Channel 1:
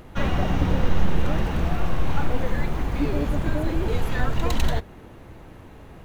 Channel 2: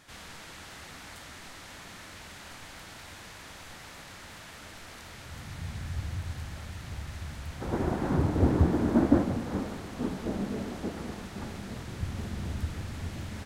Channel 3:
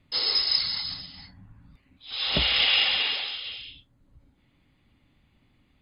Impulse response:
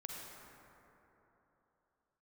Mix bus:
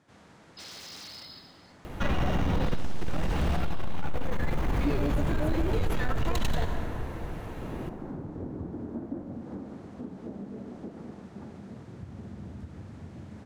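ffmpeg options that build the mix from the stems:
-filter_complex "[0:a]asoftclip=type=tanh:threshold=-17.5dB,adelay=1850,volume=1.5dB,asplit=2[a][b];[b]volume=-3dB[c];[1:a]equalizer=f=3.6k:w=0.32:g=-14.5,volume=-2dB,asplit=2[d][e];[e]volume=-15dB[f];[2:a]aeval=exprs='(mod(12.6*val(0)+1,2)-1)/12.6':c=same,adelay=450,volume=-15dB,asplit=2[g][h];[h]volume=-10.5dB[i];[d][g]amix=inputs=2:normalize=0,highpass=110,lowpass=6.8k,acompressor=threshold=-37dB:ratio=6,volume=0dB[j];[3:a]atrim=start_sample=2205[k];[c][f][i]amix=inputs=3:normalize=0[l];[l][k]afir=irnorm=-1:irlink=0[m];[a][j][m]amix=inputs=3:normalize=0,alimiter=limit=-19.5dB:level=0:latency=1:release=68"

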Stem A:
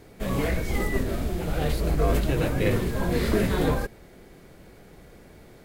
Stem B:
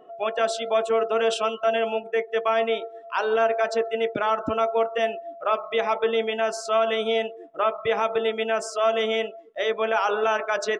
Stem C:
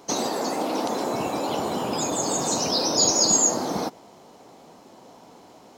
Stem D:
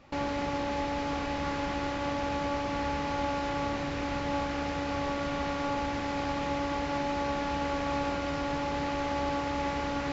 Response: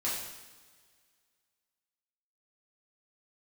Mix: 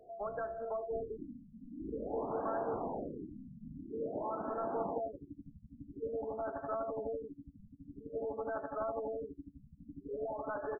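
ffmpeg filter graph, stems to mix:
-filter_complex "[0:a]aeval=exprs='val(0)*pow(10,-20*if(lt(mod(1.1*n/s,1),2*abs(1.1)/1000),1-mod(1.1*n/s,1)/(2*abs(1.1)/1000),(mod(1.1*n/s,1)-2*abs(1.1)/1000)/(1-2*abs(1.1)/1000))/20)':c=same,volume=-17dB[a];[1:a]highpass=280,acompressor=threshold=-25dB:ratio=6,asoftclip=type=tanh:threshold=-24.5dB,volume=-7dB[b];[2:a]adelay=1100,volume=-8dB[c];[3:a]aeval=exprs='val(0)*pow(10,-25*(0.5-0.5*cos(2*PI*12*n/s))/20)':c=same,adelay=1650,volume=-5.5dB[d];[a][c][d]amix=inputs=3:normalize=0,lowshelf=f=160:g=-7,acompressor=threshold=-38dB:ratio=2,volume=0dB[e];[b][e]amix=inputs=2:normalize=0,afftfilt=real='re*lt(b*sr/1024,250*pow(1800/250,0.5+0.5*sin(2*PI*0.49*pts/sr)))':imag='im*lt(b*sr/1024,250*pow(1800/250,0.5+0.5*sin(2*PI*0.49*pts/sr)))':win_size=1024:overlap=0.75"

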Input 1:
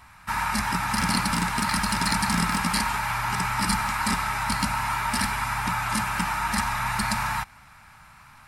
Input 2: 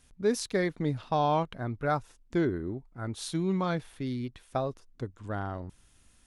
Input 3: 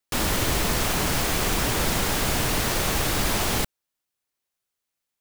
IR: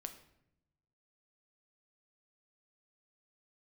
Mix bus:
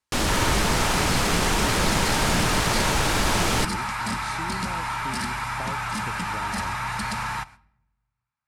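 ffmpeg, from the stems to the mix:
-filter_complex "[0:a]agate=range=-38dB:threshold=-42dB:ratio=16:detection=peak,highpass=41,asoftclip=type=hard:threshold=-23.5dB,volume=-3dB,asplit=2[a][b];[b]volume=-6.5dB[c];[1:a]acompressor=threshold=-36dB:ratio=6,adelay=1050,volume=1dB[d];[2:a]volume=1.5dB[e];[3:a]atrim=start_sample=2205[f];[c][f]afir=irnorm=-1:irlink=0[g];[a][d][e][g]amix=inputs=4:normalize=0,lowpass=9.5k"

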